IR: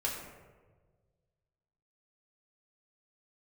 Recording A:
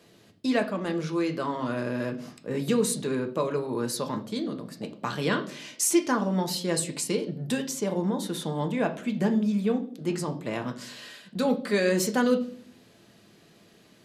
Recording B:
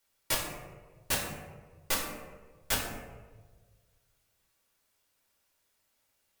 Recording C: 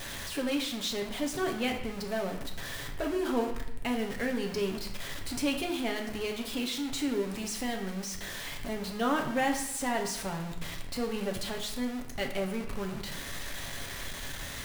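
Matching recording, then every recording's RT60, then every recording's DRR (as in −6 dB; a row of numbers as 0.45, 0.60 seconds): B; 0.50, 1.4, 0.80 seconds; 4.5, −4.0, 1.5 decibels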